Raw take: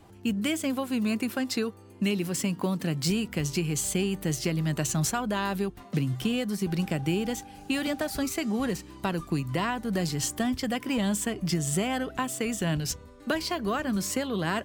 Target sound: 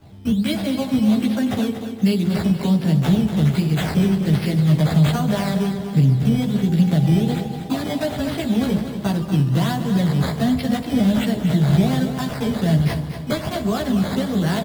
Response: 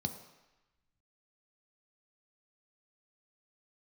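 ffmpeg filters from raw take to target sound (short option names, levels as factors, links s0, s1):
-filter_complex "[0:a]acrusher=samples=11:mix=1:aa=0.000001:lfo=1:lforange=11:lforate=1.3,aecho=1:1:238|476|714|952|1190:0.335|0.157|0.074|0.0348|0.0163,asplit=2[s0][s1];[1:a]atrim=start_sample=2205,asetrate=36603,aresample=44100,adelay=14[s2];[s1][s2]afir=irnorm=-1:irlink=0,volume=1.06[s3];[s0][s3]amix=inputs=2:normalize=0,volume=0.794"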